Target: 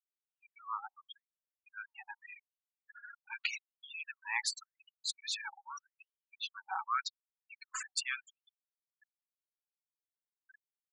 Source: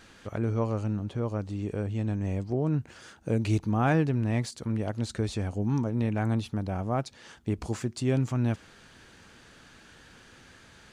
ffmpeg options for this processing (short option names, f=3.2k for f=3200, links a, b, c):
-af "afftfilt=real='re*gte(hypot(re,im),0.0141)':imag='im*gte(hypot(re,im),0.0141)':win_size=1024:overlap=0.75,afftfilt=real='re*gte(b*sr/1024,770*pow(3100/770,0.5+0.5*sin(2*PI*0.85*pts/sr)))':imag='im*gte(b*sr/1024,770*pow(3100/770,0.5+0.5*sin(2*PI*0.85*pts/sr)))':win_size=1024:overlap=0.75,volume=7dB"